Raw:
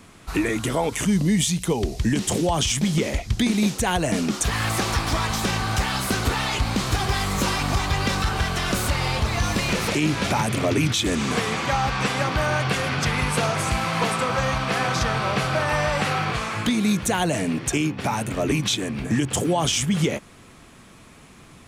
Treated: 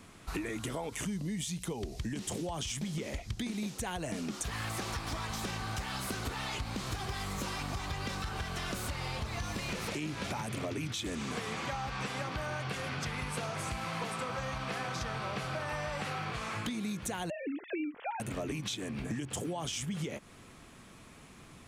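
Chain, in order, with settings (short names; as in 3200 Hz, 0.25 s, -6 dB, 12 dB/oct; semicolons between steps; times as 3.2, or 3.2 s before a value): 17.3–18.2 sine-wave speech; compressor 6:1, threshold -28 dBFS, peak gain reduction 11.5 dB; gain -6 dB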